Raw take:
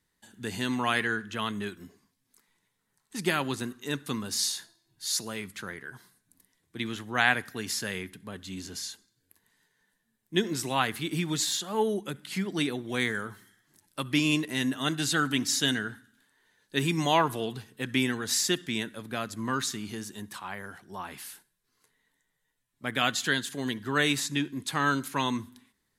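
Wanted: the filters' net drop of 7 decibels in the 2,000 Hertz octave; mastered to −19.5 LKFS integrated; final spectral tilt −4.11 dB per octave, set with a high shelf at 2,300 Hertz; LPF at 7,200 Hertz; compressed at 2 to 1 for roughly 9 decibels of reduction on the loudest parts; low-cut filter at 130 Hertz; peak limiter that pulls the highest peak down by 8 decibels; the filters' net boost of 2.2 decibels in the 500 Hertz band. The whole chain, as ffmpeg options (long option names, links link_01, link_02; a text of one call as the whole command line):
ffmpeg -i in.wav -af "highpass=130,lowpass=7200,equalizer=frequency=500:width_type=o:gain=3.5,equalizer=frequency=2000:width_type=o:gain=-8,highshelf=frequency=2300:gain=-3.5,acompressor=threshold=-36dB:ratio=2,volume=19.5dB,alimiter=limit=-8dB:level=0:latency=1" out.wav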